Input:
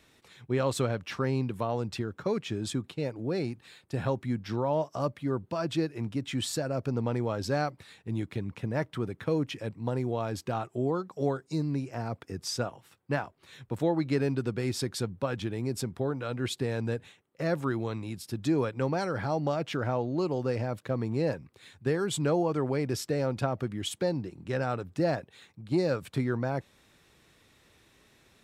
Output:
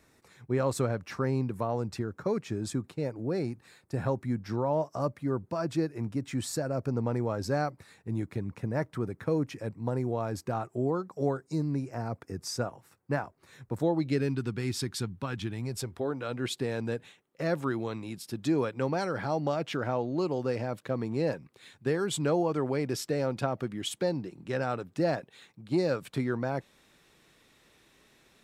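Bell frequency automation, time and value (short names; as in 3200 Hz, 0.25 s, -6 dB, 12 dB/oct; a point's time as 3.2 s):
bell -11 dB 0.74 oct
13.75 s 3200 Hz
14.34 s 560 Hz
15.46 s 560 Hz
16.23 s 83 Hz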